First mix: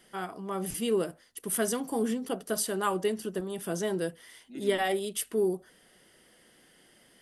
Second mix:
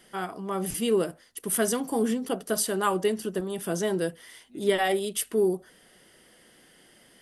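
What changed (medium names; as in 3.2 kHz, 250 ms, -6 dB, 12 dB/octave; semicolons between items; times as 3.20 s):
first voice +3.5 dB; second voice -7.5 dB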